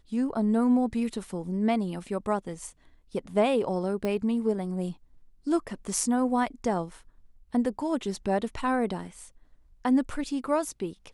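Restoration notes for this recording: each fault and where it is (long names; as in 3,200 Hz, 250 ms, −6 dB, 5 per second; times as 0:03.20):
0:04.05: click −18 dBFS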